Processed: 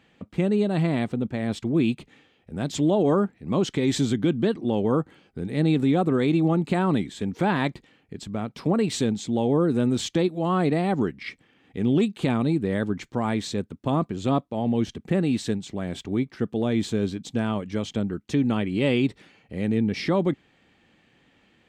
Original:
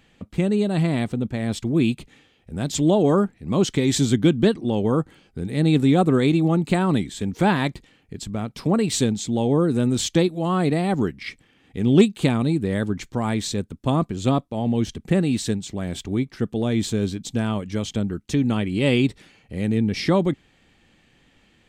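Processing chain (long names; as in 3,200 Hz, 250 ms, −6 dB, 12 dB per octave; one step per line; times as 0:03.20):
high-pass filter 150 Hz 6 dB per octave
high-shelf EQ 4,900 Hz −11 dB
brickwall limiter −13 dBFS, peak gain reduction 8.5 dB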